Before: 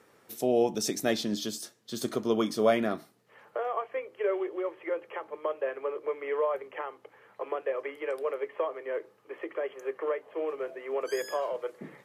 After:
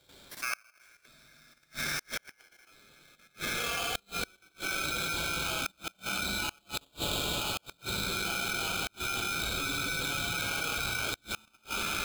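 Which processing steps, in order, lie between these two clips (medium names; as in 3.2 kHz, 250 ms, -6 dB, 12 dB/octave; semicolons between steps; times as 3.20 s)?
chunks repeated in reverse 251 ms, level -11 dB; high-pass 57 Hz 24 dB/octave; on a send: two-band feedback delay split 910 Hz, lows 180 ms, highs 261 ms, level -11 dB; on the sum: tremolo saw up 3.5 Hz, depth 65%; high-order bell 2.3 kHz +14 dB; simulated room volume 120 m³, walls hard, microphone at 1 m; level held to a coarse grid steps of 11 dB; inverted gate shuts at -21 dBFS, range -37 dB; 6.58–7.82 s: tilt EQ +3.5 dB/octave; polarity switched at an audio rate 1.9 kHz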